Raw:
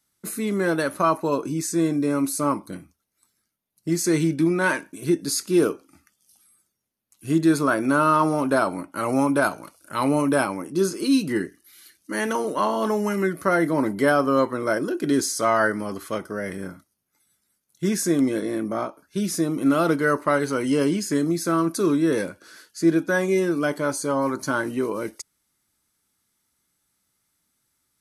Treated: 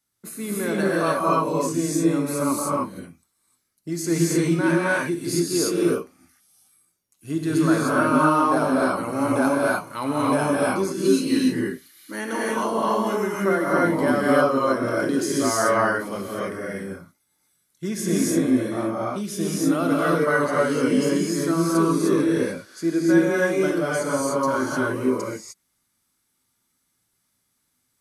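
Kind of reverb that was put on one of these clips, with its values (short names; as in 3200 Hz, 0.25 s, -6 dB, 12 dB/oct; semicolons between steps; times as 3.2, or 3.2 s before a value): non-linear reverb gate 0.33 s rising, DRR -5.5 dB; gain -5.5 dB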